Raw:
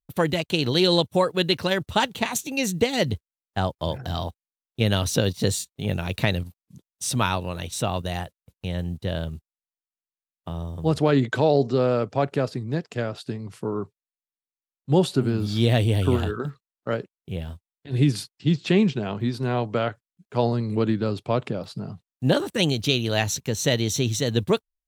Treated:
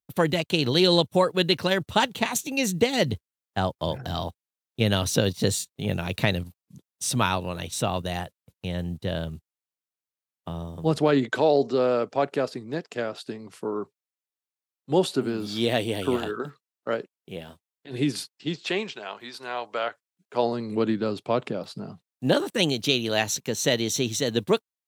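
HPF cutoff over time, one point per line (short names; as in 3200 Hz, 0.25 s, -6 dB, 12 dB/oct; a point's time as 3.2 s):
10.51 s 99 Hz
11.38 s 260 Hz
18.35 s 260 Hz
18.99 s 780 Hz
19.61 s 780 Hz
20.82 s 190 Hz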